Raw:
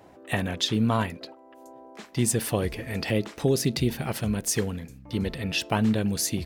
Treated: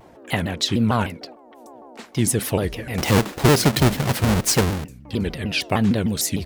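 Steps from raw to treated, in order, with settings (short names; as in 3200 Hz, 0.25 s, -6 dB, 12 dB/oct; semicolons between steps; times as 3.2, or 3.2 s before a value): 2.98–4.84 half-waves squared off; shaped vibrato saw down 6.6 Hz, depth 250 cents; gain +4 dB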